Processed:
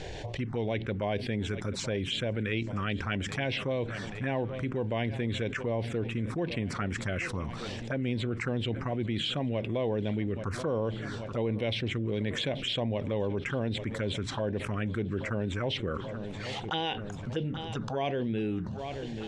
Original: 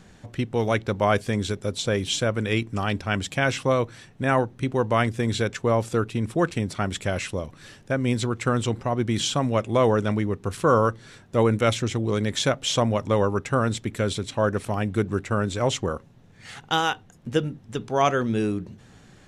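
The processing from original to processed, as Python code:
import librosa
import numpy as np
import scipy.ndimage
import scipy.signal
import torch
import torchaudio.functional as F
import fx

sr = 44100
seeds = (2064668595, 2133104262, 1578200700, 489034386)

y = fx.low_shelf(x, sr, hz=290.0, db=-3.5)
y = fx.env_phaser(y, sr, low_hz=200.0, high_hz=1300.0, full_db=-21.0)
y = scipy.signal.sosfilt(scipy.signal.butter(2, 3900.0, 'lowpass', fs=sr, output='sos'), y)
y = fx.echo_feedback(y, sr, ms=832, feedback_pct=60, wet_db=-23.0)
y = fx.env_flatten(y, sr, amount_pct=70)
y = y * 10.0 ** (-8.5 / 20.0)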